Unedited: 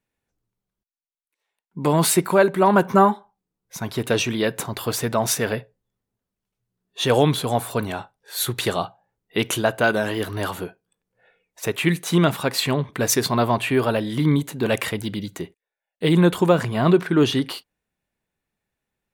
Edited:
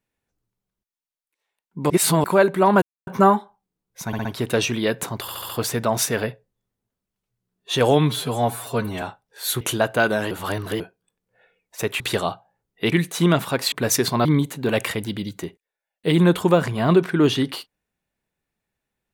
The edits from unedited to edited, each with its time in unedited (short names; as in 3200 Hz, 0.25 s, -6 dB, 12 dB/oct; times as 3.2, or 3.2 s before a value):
1.9–2.24 reverse
2.82 insert silence 0.25 s
3.82 stutter 0.06 s, 4 plays
4.78 stutter 0.07 s, 5 plays
7.2–7.94 stretch 1.5×
8.53–9.45 move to 11.84
10.15–10.64 reverse
12.64–12.9 cut
13.43–14.22 cut